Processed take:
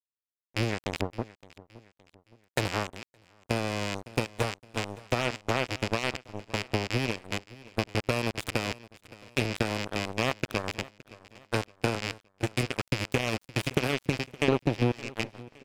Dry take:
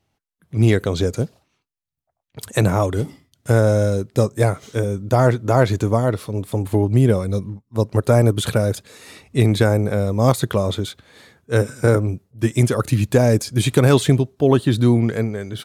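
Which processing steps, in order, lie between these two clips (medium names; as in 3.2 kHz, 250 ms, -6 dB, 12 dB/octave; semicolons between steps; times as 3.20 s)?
rattle on loud lows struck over -21 dBFS, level -9 dBFS; 1.01–2.44 s: low-pass 1 kHz 24 dB/octave; 14.48–14.92 s: resonant low shelf 750 Hz +8 dB, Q 3; compression 5:1, threshold -15 dBFS, peak gain reduction 13 dB; Chebyshev shaper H 7 -17 dB, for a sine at -3 dBFS; crossover distortion -39.5 dBFS; feedback delay 567 ms, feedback 41%, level -20 dB; 2.94–3.51 s: level held to a coarse grid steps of 18 dB; trim -6 dB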